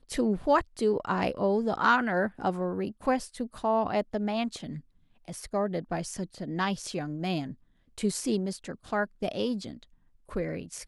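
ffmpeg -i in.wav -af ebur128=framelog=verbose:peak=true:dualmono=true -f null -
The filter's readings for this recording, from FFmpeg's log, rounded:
Integrated loudness:
  I:         -26.8 LUFS
  Threshold: -37.4 LUFS
Loudness range:
  LRA:         5.9 LU
  Threshold: -47.8 LUFS
  LRA low:   -30.5 LUFS
  LRA high:  -24.6 LUFS
True peak:
  Peak:       -9.5 dBFS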